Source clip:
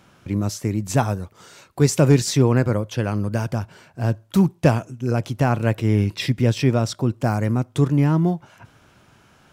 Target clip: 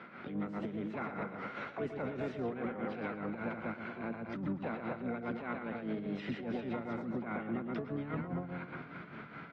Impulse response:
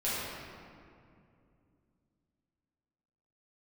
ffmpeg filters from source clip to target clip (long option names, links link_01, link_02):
-filter_complex "[0:a]aecho=1:1:119|238|357|476:0.596|0.185|0.0572|0.0177,asplit=2[link_01][link_02];[1:a]atrim=start_sample=2205[link_03];[link_02][link_03]afir=irnorm=-1:irlink=0,volume=-30dB[link_04];[link_01][link_04]amix=inputs=2:normalize=0,acompressor=threshold=-36dB:ratio=2.5,highpass=frequency=190:width=0.5412,highpass=frequency=190:width=1.3066,equalizer=frequency=230:width_type=q:width=4:gain=7,equalizer=frequency=330:width_type=q:width=4:gain=-8,equalizer=frequency=470:width_type=q:width=4:gain=5,equalizer=frequency=930:width_type=q:width=4:gain=-4,equalizer=frequency=1400:width_type=q:width=4:gain=10,lowpass=frequency=2300:width=0.5412,lowpass=frequency=2300:width=1.3066,asplit=4[link_05][link_06][link_07][link_08];[link_06]asetrate=22050,aresample=44100,atempo=2,volume=-17dB[link_09];[link_07]asetrate=33038,aresample=44100,atempo=1.33484,volume=-11dB[link_10];[link_08]asetrate=66075,aresample=44100,atempo=0.66742,volume=-6dB[link_11];[link_05][link_09][link_10][link_11]amix=inputs=4:normalize=0,alimiter=level_in=6.5dB:limit=-24dB:level=0:latency=1:release=32,volume=-6.5dB,tremolo=f=4.9:d=0.6,volume=2.5dB" -ar 32000 -c:a aac -b:a 48k